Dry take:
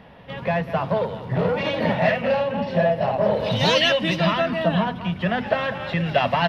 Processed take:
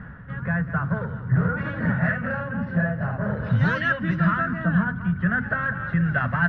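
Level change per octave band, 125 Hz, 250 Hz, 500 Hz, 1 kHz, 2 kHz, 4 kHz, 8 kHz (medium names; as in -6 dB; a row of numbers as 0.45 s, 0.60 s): +4.0 dB, +1.0 dB, -12.5 dB, -5.5 dB, +2.5 dB, -21.0 dB, no reading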